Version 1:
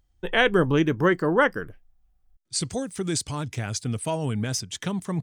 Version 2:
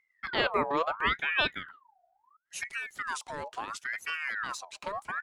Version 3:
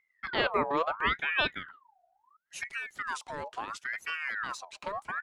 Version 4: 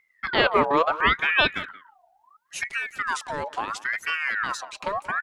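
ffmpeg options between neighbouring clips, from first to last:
ffmpeg -i in.wav -af "highshelf=frequency=5400:gain=-9,aeval=exprs='val(0)*sin(2*PI*1400*n/s+1400*0.5/0.73*sin(2*PI*0.73*n/s))':channel_layout=same,volume=-5dB" out.wav
ffmpeg -i in.wav -af "highshelf=frequency=6200:gain=-7" out.wav
ffmpeg -i in.wav -filter_complex "[0:a]asplit=2[link_01][link_02];[link_02]adelay=180,highpass=300,lowpass=3400,asoftclip=type=hard:threshold=-21.5dB,volume=-17dB[link_03];[link_01][link_03]amix=inputs=2:normalize=0,volume=8dB" out.wav

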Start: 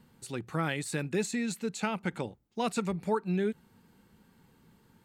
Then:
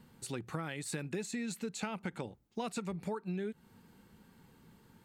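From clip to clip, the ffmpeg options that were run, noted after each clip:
ffmpeg -i in.wav -af "acompressor=threshold=-36dB:ratio=6,volume=1dB" out.wav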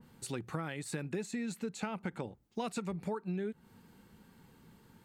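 ffmpeg -i in.wav -af "adynamicequalizer=threshold=0.00126:dfrequency=2100:dqfactor=0.7:tfrequency=2100:tqfactor=0.7:attack=5:release=100:ratio=0.375:range=2.5:mode=cutabove:tftype=highshelf,volume=1dB" out.wav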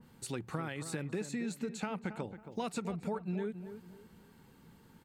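ffmpeg -i in.wav -filter_complex "[0:a]asplit=2[link_01][link_02];[link_02]adelay=274,lowpass=frequency=1600:poles=1,volume=-10dB,asplit=2[link_03][link_04];[link_04]adelay=274,lowpass=frequency=1600:poles=1,volume=0.35,asplit=2[link_05][link_06];[link_06]adelay=274,lowpass=frequency=1600:poles=1,volume=0.35,asplit=2[link_07][link_08];[link_08]adelay=274,lowpass=frequency=1600:poles=1,volume=0.35[link_09];[link_01][link_03][link_05][link_07][link_09]amix=inputs=5:normalize=0" out.wav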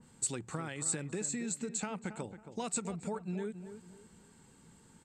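ffmpeg -i in.wav -af "lowpass=frequency=7800:width_type=q:width=7.9,volume=-1.5dB" out.wav

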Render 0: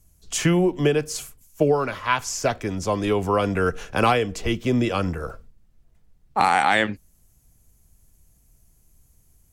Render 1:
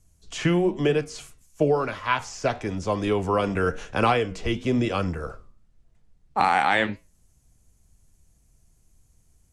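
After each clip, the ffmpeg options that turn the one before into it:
ffmpeg -i in.wav -filter_complex "[0:a]lowpass=frequency=10000:width=0.5412,lowpass=frequency=10000:width=1.3066,acrossover=split=4500[link_01][link_02];[link_02]acompressor=threshold=-41dB:ratio=4:attack=1:release=60[link_03];[link_01][link_03]amix=inputs=2:normalize=0,flanger=delay=8.2:depth=7.2:regen=-81:speed=1:shape=triangular,volume=2.5dB" out.wav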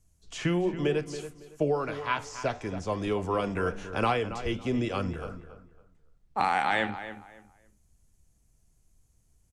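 ffmpeg -i in.wav -filter_complex "[0:a]asplit=2[link_01][link_02];[link_02]adelay=278,lowpass=frequency=2700:poles=1,volume=-11.5dB,asplit=2[link_03][link_04];[link_04]adelay=278,lowpass=frequency=2700:poles=1,volume=0.26,asplit=2[link_05][link_06];[link_06]adelay=278,lowpass=frequency=2700:poles=1,volume=0.26[link_07];[link_01][link_03][link_05][link_07]amix=inputs=4:normalize=0,volume=-5.5dB" out.wav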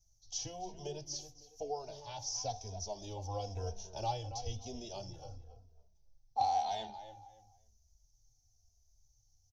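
ffmpeg -i in.wav -filter_complex "[0:a]firequalizer=gain_entry='entry(110,0);entry(170,-17);entry(400,-13);entry(790,2);entry(1200,-27);entry(2000,-25);entry(3400,-3);entry(5900,15);entry(8400,-25);entry(13000,1)':delay=0.05:min_phase=1,asplit=2[link_01][link_02];[link_02]adelay=2.9,afreqshift=-1[link_03];[link_01][link_03]amix=inputs=2:normalize=1,volume=-1.5dB" out.wav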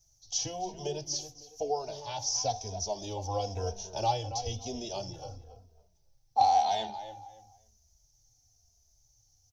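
ffmpeg -i in.wav -af "lowshelf=frequency=67:gain=-12,volume=8dB" out.wav

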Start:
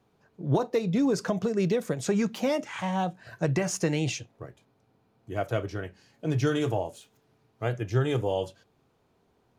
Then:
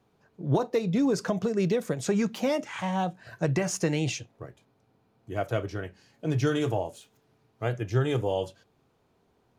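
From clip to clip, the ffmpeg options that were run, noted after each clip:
ffmpeg -i in.wav -af anull out.wav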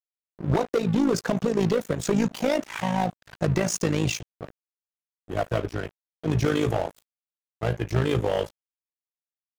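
ffmpeg -i in.wav -af "aeval=exprs='0.2*(cos(1*acos(clip(val(0)/0.2,-1,1)))-cos(1*PI/2))+0.0398*(cos(5*acos(clip(val(0)/0.2,-1,1)))-cos(5*PI/2))':channel_layout=same,tremolo=f=54:d=0.667,aeval=exprs='sgn(val(0))*max(abs(val(0))-0.0106,0)':channel_layout=same,volume=4dB" out.wav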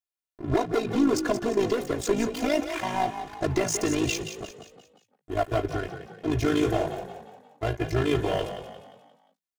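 ffmpeg -i in.wav -filter_complex "[0:a]aecho=1:1:2.9:0.93,asplit=2[link_01][link_02];[link_02]asplit=5[link_03][link_04][link_05][link_06][link_07];[link_03]adelay=176,afreqshift=34,volume=-9.5dB[link_08];[link_04]adelay=352,afreqshift=68,volume=-16.4dB[link_09];[link_05]adelay=528,afreqshift=102,volume=-23.4dB[link_10];[link_06]adelay=704,afreqshift=136,volume=-30.3dB[link_11];[link_07]adelay=880,afreqshift=170,volume=-37.2dB[link_12];[link_08][link_09][link_10][link_11][link_12]amix=inputs=5:normalize=0[link_13];[link_01][link_13]amix=inputs=2:normalize=0,volume=-3dB" out.wav

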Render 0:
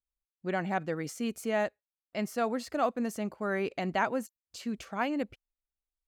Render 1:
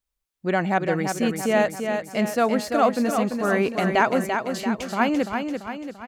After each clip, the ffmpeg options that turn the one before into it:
ffmpeg -i in.wav -af "aecho=1:1:340|680|1020|1360|1700|2040:0.501|0.261|0.136|0.0705|0.0366|0.0191,volume=9dB" out.wav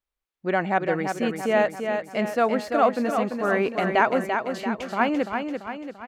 ffmpeg -i in.wav -af "bass=frequency=250:gain=-6,treble=frequency=4000:gain=-10" out.wav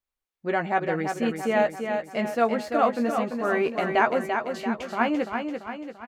ffmpeg -i in.wav -filter_complex "[0:a]asplit=2[link_01][link_02];[link_02]adelay=13,volume=-7dB[link_03];[link_01][link_03]amix=inputs=2:normalize=0,volume=-2.5dB" out.wav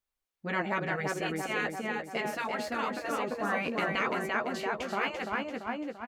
ffmpeg -i in.wav -af "afftfilt=real='re*lt(hypot(re,im),0.251)':imag='im*lt(hypot(re,im),0.251)':win_size=1024:overlap=0.75" out.wav

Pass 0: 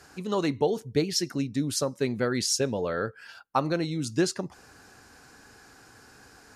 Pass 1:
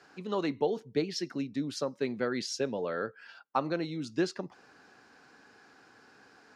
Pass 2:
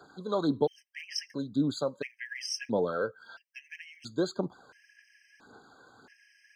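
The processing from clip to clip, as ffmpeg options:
ffmpeg -i in.wav -filter_complex "[0:a]acrossover=split=150 5200:gain=0.1 1 0.112[link_01][link_02][link_03];[link_01][link_02][link_03]amix=inputs=3:normalize=0,volume=-4dB" out.wav
ffmpeg -i in.wav -af "aphaser=in_gain=1:out_gain=1:delay=2:decay=0.47:speed=1.8:type=sinusoidal,afftfilt=real='re*gt(sin(2*PI*0.74*pts/sr)*(1-2*mod(floor(b*sr/1024/1600),2)),0)':imag='im*gt(sin(2*PI*0.74*pts/sr)*(1-2*mod(floor(b*sr/1024/1600),2)),0)':win_size=1024:overlap=0.75,volume=2dB" out.wav

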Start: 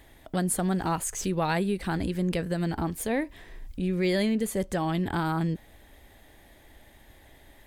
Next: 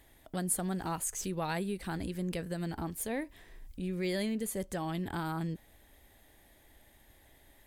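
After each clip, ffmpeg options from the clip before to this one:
ffmpeg -i in.wav -af "equalizer=frequency=13000:width_type=o:width=1.5:gain=7,volume=-8dB" out.wav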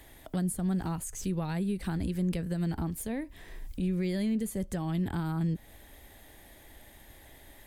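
ffmpeg -i in.wav -filter_complex "[0:a]acrossover=split=240[link_01][link_02];[link_02]acompressor=threshold=-49dB:ratio=3[link_03];[link_01][link_03]amix=inputs=2:normalize=0,volume=8dB" out.wav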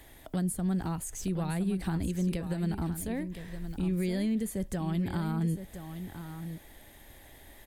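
ffmpeg -i in.wav -af "aecho=1:1:1016:0.316" out.wav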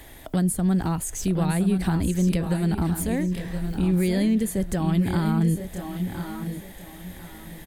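ffmpeg -i in.wav -af "aecho=1:1:1044|2088|3132:0.299|0.0716|0.0172,volume=8dB" out.wav

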